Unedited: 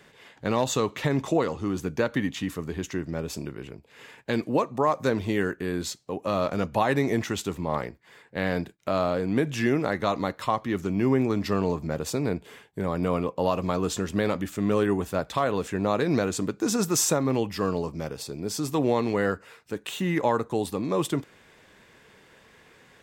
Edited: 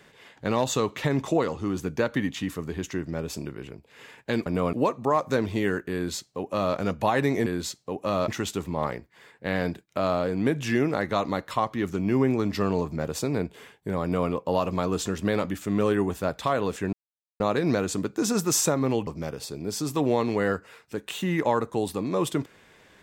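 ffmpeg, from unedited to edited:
-filter_complex "[0:a]asplit=7[a][b][c][d][e][f][g];[a]atrim=end=4.462[h];[b]atrim=start=12.938:end=13.212[i];[c]atrim=start=4.458:end=7.192[j];[d]atrim=start=5.668:end=6.492[k];[e]atrim=start=7.188:end=15.84,asetpts=PTS-STARTPTS,afade=t=out:st=8.648:d=0.004:c=hsin,apad=pad_dur=0.47[l];[f]atrim=start=15.84:end=17.512,asetpts=PTS-STARTPTS,afade=t=in:d=0.004:c=hsin[m];[g]atrim=start=17.848[n];[h][i]acrossfade=d=0.004:c1=hsin:c2=hsin[o];[o][j]acrossfade=d=0.004:c1=hsin:c2=hsin[p];[p][k]acrossfade=d=0.004:c1=hsin:c2=hsin[q];[l][m]concat=n=2:v=0:a=1[r];[q][r]acrossfade=d=0.004:c1=hsin:c2=hsin[s];[s][n]acrossfade=d=0.004:c1=hsin:c2=hsin"

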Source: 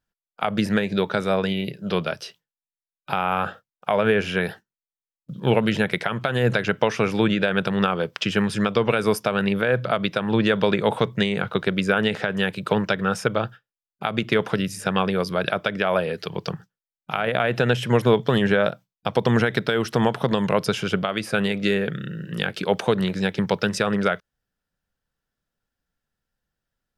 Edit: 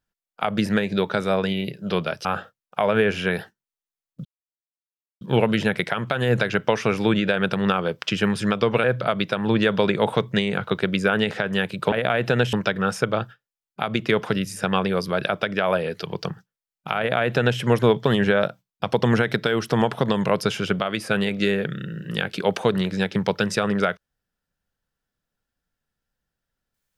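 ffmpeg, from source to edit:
-filter_complex "[0:a]asplit=6[a][b][c][d][e][f];[a]atrim=end=2.252[g];[b]atrim=start=3.348:end=5.35,asetpts=PTS-STARTPTS,afade=t=out:st=1.998:d=0.004:c=hsin,apad=pad_dur=0.96[h];[c]atrim=start=5.35:end=8.982,asetpts=PTS-STARTPTS,afade=t=in:d=0.004:c=hsin[i];[d]atrim=start=9.678:end=12.762[j];[e]atrim=start=17.218:end=17.832[k];[f]atrim=start=12.758[l];[h][i]concat=n=2:v=0:a=1[m];[g][m]acrossfade=d=0.004:c1=hsin:c2=hsin[n];[n][j]acrossfade=d=0.004:c1=hsin:c2=hsin[o];[o][k]acrossfade=d=0.004:c1=hsin:c2=hsin[p];[p][l]acrossfade=d=0.004:c1=hsin:c2=hsin"

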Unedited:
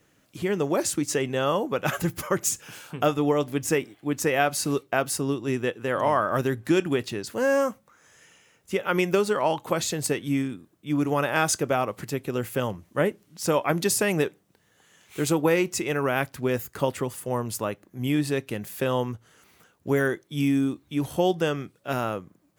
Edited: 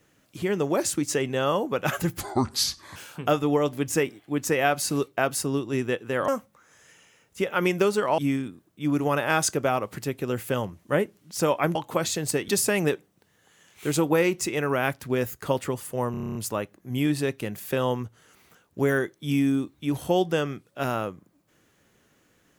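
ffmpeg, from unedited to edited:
-filter_complex "[0:a]asplit=15[a][b][c][d][e][f][g][h][i][j][k][l][m][n][o];[a]atrim=end=2.204[p];[b]atrim=start=2.2:end=2.71,asetpts=PTS-STARTPTS,asetrate=29547,aresample=44100[q];[c]atrim=start=2.706:end=6.032[r];[d]atrim=start=7.608:end=9.512[s];[e]atrim=start=10.238:end=13.812[t];[f]atrim=start=9.508:end=10.242[u];[g]atrim=start=13.808:end=17.472[v];[h]atrim=start=17.438:end=17.472[w];[i]atrim=start=17.438:end=17.472[x];[j]atrim=start=17.438:end=17.472[y];[k]atrim=start=17.438:end=17.472[z];[l]atrim=start=17.438:end=17.472[aa];[m]atrim=start=17.438:end=17.472[ab];[n]atrim=start=17.438:end=17.472[ac];[o]atrim=start=17.438[ad];[p][q]acrossfade=d=0.004:c1=hsin:c2=hsin[ae];[ae][r]acrossfade=d=0.004:c1=hsin:c2=hsin[af];[af][s]acrossfade=d=0.004:c1=hsin:c2=hsin[ag];[ag][t]acrossfade=d=0.004:c1=hsin:c2=hsin[ah];[ah][u]acrossfade=d=0.004:c1=hsin:c2=hsin[ai];[ai][v]acrossfade=d=0.004:c1=hsin:c2=hsin[aj];[aj][w]acrossfade=d=0.004:c1=hsin:c2=hsin[ak];[ak][x]acrossfade=d=0.004:c1=hsin:c2=hsin[al];[al][y]acrossfade=d=0.004:c1=hsin:c2=hsin[am];[am][z]acrossfade=d=0.004:c1=hsin:c2=hsin[an];[an][aa]acrossfade=d=0.004:c1=hsin:c2=hsin[ao];[ao][ab]acrossfade=d=0.004:c1=hsin:c2=hsin[ap];[ap][ac]acrossfade=d=0.004:c1=hsin:c2=hsin[aq];[aq][ad]acrossfade=d=0.004:c1=hsin:c2=hsin"

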